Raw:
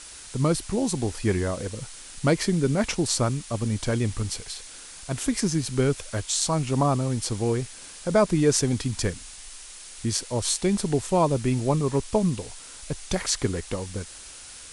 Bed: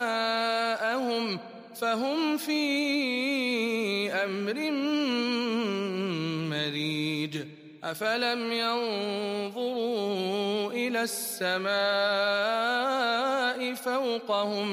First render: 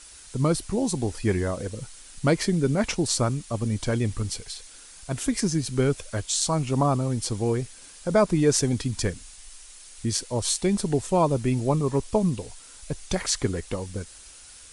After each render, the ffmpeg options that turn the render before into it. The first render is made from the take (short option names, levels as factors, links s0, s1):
-af "afftdn=nr=6:nf=-43"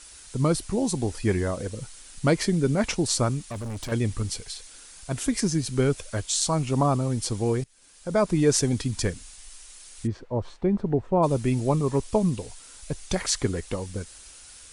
-filter_complex "[0:a]asettb=1/sr,asplit=3[s0][s1][s2];[s0]atrim=end=3.404[s3];[s1]atrim=start=3.4:end=3.92,asetpts=PTS-STARTPTS,afade=t=in:d=0.004:c=qsin,afade=t=out:st=0.516:d=0.004:c=qsin,asoftclip=type=hard:threshold=0.0299[s4];[s2]atrim=start=3.916[s5];[s3][s4]acrossfade=d=0.004:c1=hsin:c2=qsin[s6];[s6][s5]acrossfade=d=0.004:c1=qsin:c2=hsin,asplit=3[s7][s8][s9];[s7]afade=t=out:st=10.06:d=0.02[s10];[s8]lowpass=1200,afade=t=in:st=10.06:d=0.02,afade=t=out:st=11.22:d=0.02[s11];[s9]afade=t=in:st=11.22:d=0.02[s12];[s10][s11][s12]amix=inputs=3:normalize=0,asplit=2[s13][s14];[s13]atrim=end=7.64,asetpts=PTS-STARTPTS,afade=t=out:st=7.636:d=0.004:c=hsin:silence=0.0841395[s15];[s14]atrim=start=7.64,asetpts=PTS-STARTPTS,afade=t=in:d=0.77:silence=0.0841395[s16];[s15][s16]concat=n=2:v=0:a=1"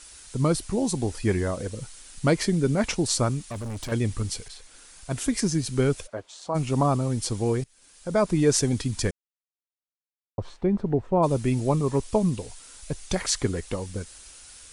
-filter_complex "[0:a]asettb=1/sr,asplit=3[s0][s1][s2];[s0]atrim=end=4.484[s3];[s1]atrim=start=4.48:end=5.1,asetpts=PTS-STARTPTS,afade=t=in:d=0.004:c=qsin,afade=t=out:st=0.616:d=0.004:c=qsin,adynamicequalizer=threshold=0.00251:dfrequency=2700:dqfactor=0.7:tfrequency=2700:tqfactor=0.7:attack=5:release=100:ratio=0.375:range=3.5:mode=cutabove:tftype=highshelf[s4];[s2]atrim=start=5.096[s5];[s3][s4]acrossfade=d=0.004:c1=hsin:c2=qsin[s6];[s6][s5]acrossfade=d=0.004:c1=qsin:c2=hsin,asplit=3[s7][s8][s9];[s7]afade=t=out:st=6.06:d=0.02[s10];[s8]bandpass=f=600:t=q:w=0.95,afade=t=in:st=6.06:d=0.02,afade=t=out:st=6.54:d=0.02[s11];[s9]afade=t=in:st=6.54:d=0.02[s12];[s10][s11][s12]amix=inputs=3:normalize=0,asplit=3[s13][s14][s15];[s13]atrim=end=9.11,asetpts=PTS-STARTPTS,afade=t=out:st=9.106:d=0.004:c=hsin[s16];[s14]atrim=start=9.11:end=10.38,asetpts=PTS-STARTPTS,volume=0[s17];[s15]atrim=start=10.38,asetpts=PTS-STARTPTS,afade=t=in:d=0.004:c=hsin[s18];[s16][s17][s18]concat=n=3:v=0:a=1"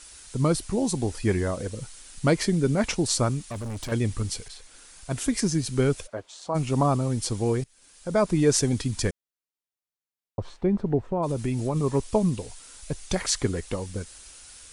-filter_complex "[0:a]asettb=1/sr,asplit=3[s0][s1][s2];[s0]atrim=end=11.104[s3];[s1]atrim=start=11.1:end=11.76,asetpts=PTS-STARTPTS,afade=t=in:d=0.004:c=qsin,afade=t=out:st=0.656:d=0.004:c=qsin,acompressor=threshold=0.0794:ratio=5:attack=3.2:release=140:knee=1:detection=peak[s4];[s2]atrim=start=11.756[s5];[s3][s4]acrossfade=d=0.004:c1=hsin:c2=qsin[s6];[s6][s5]acrossfade=d=0.004:c1=qsin:c2=hsin"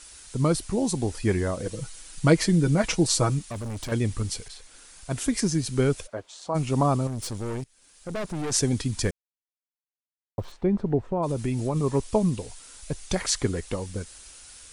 -filter_complex "[0:a]asettb=1/sr,asplit=3[s0][s1][s2];[s0]atrim=end=1.654[s3];[s1]atrim=start=1.65:end=3.39,asetpts=PTS-STARTPTS,afade=t=in:d=0.004:c=qsin,afade=t=out:st=1.736:d=0.004:c=qsin,aecho=1:1:6.2:0.65,atrim=end_sample=76734[s4];[s2]atrim=start=3.386[s5];[s3][s4]acrossfade=d=0.004:c1=hsin:c2=qsin[s6];[s6][s5]acrossfade=d=0.004:c1=qsin:c2=hsin,asettb=1/sr,asplit=3[s7][s8][s9];[s7]atrim=end=7.074[s10];[s8]atrim=start=7.07:end=8.52,asetpts=PTS-STARTPTS,afade=t=in:d=0.004:c=qsin,afade=t=out:st=1.446:d=0.004:c=qsin,aeval=exprs='(tanh(25.1*val(0)+0.5)-tanh(0.5))/25.1':c=same[s11];[s9]atrim=start=8.516[s12];[s10][s11]acrossfade=d=0.004:c1=hsin:c2=qsin[s13];[s13][s12]acrossfade=d=0.004:c1=qsin:c2=hsin,asettb=1/sr,asplit=3[s14][s15][s16];[s14]atrim=end=9.034[s17];[s15]atrim=start=9.03:end=10.52,asetpts=PTS-STARTPTS,afade=t=in:d=0.004:c=qsin,afade=t=out:st=1.486:d=0.004:c=qsin,aeval=exprs='val(0)*gte(abs(val(0)),0.00447)':c=same[s18];[s16]atrim=start=10.516[s19];[s17][s18]acrossfade=d=0.004:c1=hsin:c2=qsin[s20];[s20][s19]acrossfade=d=0.004:c1=qsin:c2=hsin"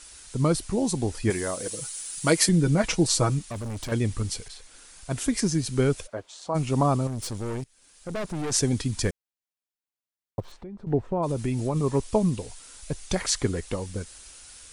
-filter_complex "[0:a]asettb=1/sr,asplit=3[s0][s1][s2];[s0]atrim=end=1.304[s3];[s1]atrim=start=1.3:end=2.49,asetpts=PTS-STARTPTS,afade=t=in:d=0.004:c=qsin,afade=t=out:st=1.186:d=0.004:c=qsin,aemphasis=mode=production:type=bsi[s4];[s2]atrim=start=2.486[s5];[s3][s4]acrossfade=d=0.004:c1=hsin:c2=qsin[s6];[s6][s5]acrossfade=d=0.004:c1=qsin:c2=hsin,asettb=1/sr,asplit=3[s7][s8][s9];[s7]atrim=end=10.404[s10];[s8]atrim=start=10.4:end=10.87,asetpts=PTS-STARTPTS,afade=t=in:d=0.004:c=qsin,afade=t=out:st=0.466:d=0.004:c=qsin,acompressor=threshold=0.01:ratio=4:attack=3.2:release=140:knee=1:detection=peak[s11];[s9]atrim=start=10.866[s12];[s10][s11]acrossfade=d=0.004:c1=hsin:c2=qsin[s13];[s13][s12]acrossfade=d=0.004:c1=qsin:c2=hsin"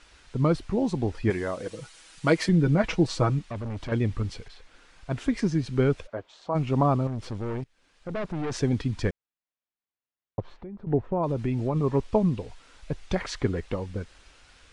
-af "lowpass=2900"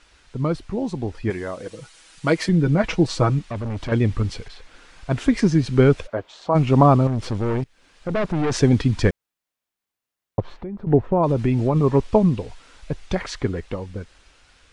-af "dynaudnorm=f=460:g=13:m=3.76"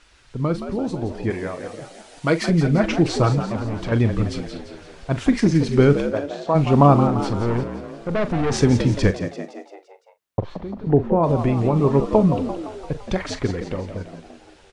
-filter_complex "[0:a]asplit=2[s0][s1];[s1]adelay=42,volume=0.237[s2];[s0][s2]amix=inputs=2:normalize=0,asplit=7[s3][s4][s5][s6][s7][s8][s9];[s4]adelay=171,afreqshift=73,volume=0.316[s10];[s5]adelay=342,afreqshift=146,volume=0.168[s11];[s6]adelay=513,afreqshift=219,volume=0.0891[s12];[s7]adelay=684,afreqshift=292,volume=0.0473[s13];[s8]adelay=855,afreqshift=365,volume=0.0248[s14];[s9]adelay=1026,afreqshift=438,volume=0.0132[s15];[s3][s10][s11][s12][s13][s14][s15]amix=inputs=7:normalize=0"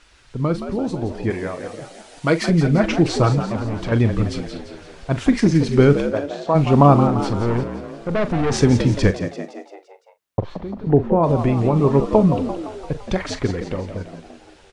-af "volume=1.19,alimiter=limit=0.891:level=0:latency=1"